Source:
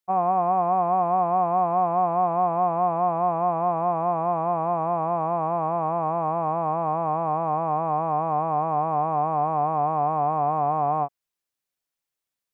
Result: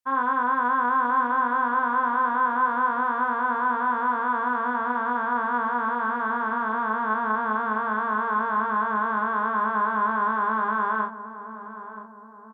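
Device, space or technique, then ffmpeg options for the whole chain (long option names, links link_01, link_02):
chipmunk voice: -filter_complex "[0:a]asetrate=62367,aresample=44100,atempo=0.707107,asplit=2[link_01][link_02];[link_02]adelay=37,volume=-4dB[link_03];[link_01][link_03]amix=inputs=2:normalize=0,asplit=2[link_04][link_05];[link_05]adelay=977,lowpass=frequency=870:poles=1,volume=-10.5dB,asplit=2[link_06][link_07];[link_07]adelay=977,lowpass=frequency=870:poles=1,volume=0.55,asplit=2[link_08][link_09];[link_09]adelay=977,lowpass=frequency=870:poles=1,volume=0.55,asplit=2[link_10][link_11];[link_11]adelay=977,lowpass=frequency=870:poles=1,volume=0.55,asplit=2[link_12][link_13];[link_13]adelay=977,lowpass=frequency=870:poles=1,volume=0.55,asplit=2[link_14][link_15];[link_15]adelay=977,lowpass=frequency=870:poles=1,volume=0.55[link_16];[link_04][link_06][link_08][link_10][link_12][link_14][link_16]amix=inputs=7:normalize=0,volume=-2.5dB"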